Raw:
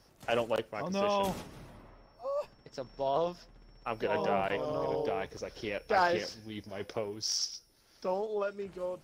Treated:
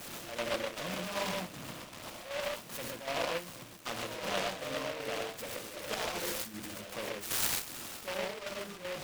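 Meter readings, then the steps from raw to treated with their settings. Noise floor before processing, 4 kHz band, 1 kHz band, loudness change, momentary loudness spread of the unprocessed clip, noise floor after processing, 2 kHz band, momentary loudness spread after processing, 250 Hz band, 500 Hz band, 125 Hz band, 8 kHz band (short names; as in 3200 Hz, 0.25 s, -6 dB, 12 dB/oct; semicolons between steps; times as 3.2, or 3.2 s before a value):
-63 dBFS, +1.5 dB, -6.5 dB, -3.0 dB, 14 LU, -49 dBFS, +0.5 dB, 8 LU, -4.0 dB, -6.0 dB, -3.5 dB, +3.5 dB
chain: zero-crossing step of -32 dBFS; speaker cabinet 160–5600 Hz, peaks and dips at 410 Hz -9 dB, 810 Hz -4 dB, 1200 Hz +4 dB, 2500 Hz -7 dB, 5100 Hz +8 dB; chopper 2.6 Hz, depth 60%, duty 45%; non-linear reverb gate 0.16 s rising, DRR -0.5 dB; noise-modulated delay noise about 1800 Hz, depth 0.17 ms; gain -6.5 dB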